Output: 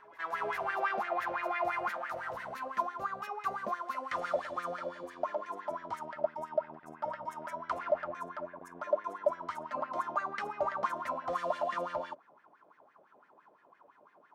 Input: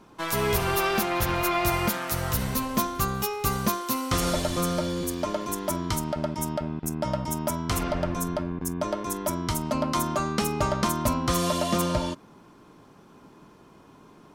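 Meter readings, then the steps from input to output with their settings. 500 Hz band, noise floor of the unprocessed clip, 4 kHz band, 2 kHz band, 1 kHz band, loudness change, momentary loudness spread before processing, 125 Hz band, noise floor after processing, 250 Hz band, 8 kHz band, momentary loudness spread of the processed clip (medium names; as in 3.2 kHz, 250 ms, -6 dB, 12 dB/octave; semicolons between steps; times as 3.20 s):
-6.0 dB, -53 dBFS, -20.5 dB, -6.0 dB, -5.0 dB, -9.0 dB, 6 LU, -28.5 dB, -65 dBFS, -21.5 dB, under -25 dB, 8 LU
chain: wah-wah 5.9 Hz 570–1900 Hz, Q 6.9; reverse echo 392 ms -22.5 dB; trim +4 dB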